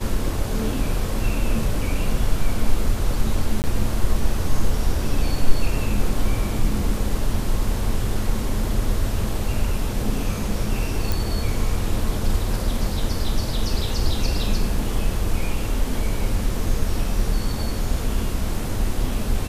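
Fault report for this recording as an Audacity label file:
3.620000	3.640000	dropout 19 ms
11.120000	11.120000	pop

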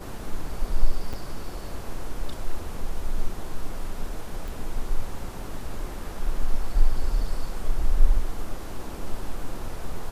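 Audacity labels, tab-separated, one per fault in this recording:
1.130000	1.140000	dropout 5.9 ms
4.480000	4.480000	pop

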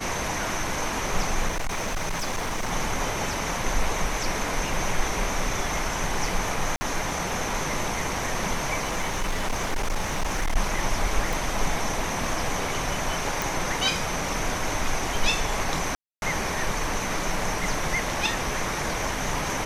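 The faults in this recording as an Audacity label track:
1.480000	2.730000	clipped -24 dBFS
6.760000	6.810000	dropout 50 ms
8.840000	10.570000	clipped -21.5 dBFS
11.330000	11.330000	pop
13.420000	13.420000	pop
15.950000	16.220000	dropout 271 ms

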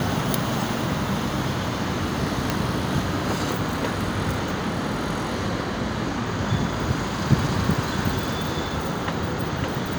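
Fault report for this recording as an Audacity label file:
2.500000	2.500000	pop

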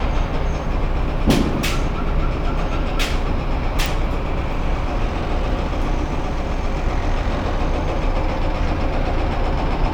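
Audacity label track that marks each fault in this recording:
3.860000	3.860000	pop

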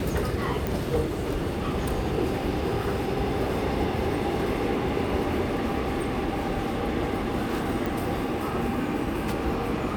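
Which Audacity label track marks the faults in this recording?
0.670000	0.670000	pop
7.860000	7.860000	pop

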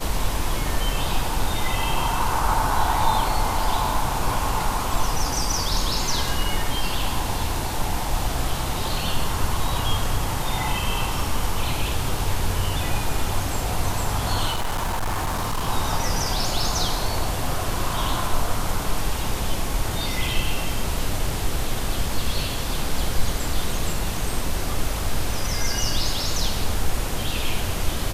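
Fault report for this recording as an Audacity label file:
14.500000	15.690000	clipped -20.5 dBFS

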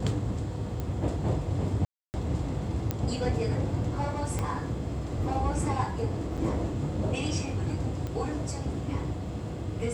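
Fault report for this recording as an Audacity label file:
0.800000	0.800000	pop -21 dBFS
1.850000	2.140000	dropout 289 ms
2.910000	2.910000	pop -14 dBFS
4.390000	4.390000	pop -17 dBFS
6.370000	6.380000	dropout 6.5 ms
8.070000	8.070000	pop -23 dBFS

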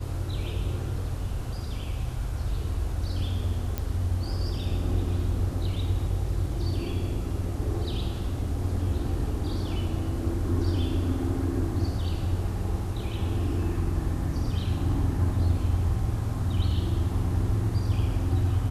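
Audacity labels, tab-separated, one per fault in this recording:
3.780000	3.780000	pop -15 dBFS

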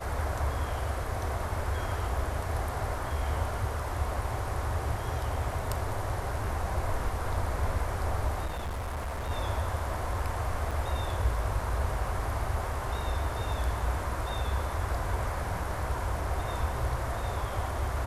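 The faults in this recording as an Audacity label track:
8.450000	9.310000	clipped -31 dBFS
10.710000	10.710000	dropout 4.4 ms

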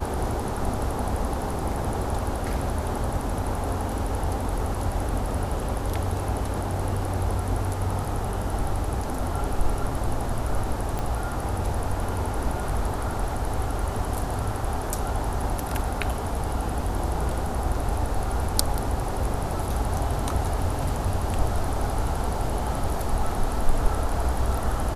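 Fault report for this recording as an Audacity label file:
10.990000	10.990000	pop

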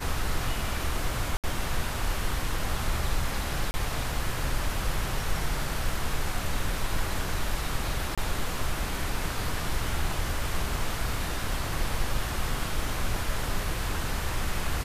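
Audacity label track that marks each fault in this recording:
1.370000	1.440000	dropout 67 ms
3.710000	3.740000	dropout 30 ms
8.150000	8.180000	dropout 26 ms

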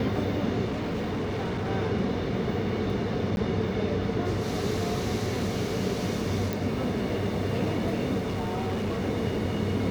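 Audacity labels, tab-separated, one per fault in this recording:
0.650000	1.710000	clipped -26.5 dBFS
3.360000	3.370000	dropout
6.530000	6.530000	pop
8.180000	9.010000	clipped -25.5 dBFS

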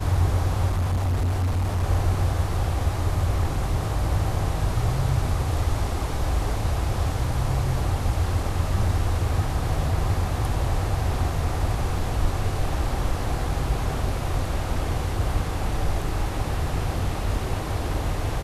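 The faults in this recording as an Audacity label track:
0.670000	1.840000	clipped -20 dBFS

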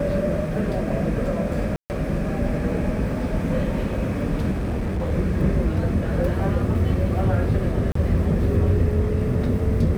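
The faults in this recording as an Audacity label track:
1.760000	1.900000	dropout 139 ms
4.510000	5.120000	clipped -21 dBFS
7.920000	7.950000	dropout 34 ms

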